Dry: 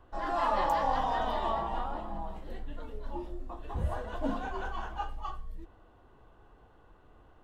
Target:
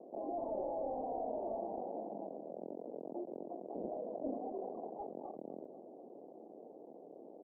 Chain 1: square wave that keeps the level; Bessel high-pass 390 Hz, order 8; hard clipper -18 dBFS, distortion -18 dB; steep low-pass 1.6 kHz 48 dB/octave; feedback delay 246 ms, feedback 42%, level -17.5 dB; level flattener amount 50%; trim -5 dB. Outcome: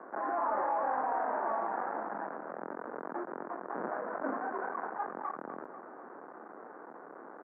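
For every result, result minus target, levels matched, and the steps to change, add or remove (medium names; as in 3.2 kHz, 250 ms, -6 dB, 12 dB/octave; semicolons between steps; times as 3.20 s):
hard clipper: distortion -10 dB; 500 Hz band -4.5 dB
change: hard clipper -25.5 dBFS, distortion -8 dB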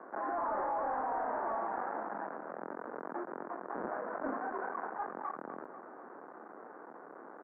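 500 Hz band -4.0 dB
change: steep low-pass 700 Hz 48 dB/octave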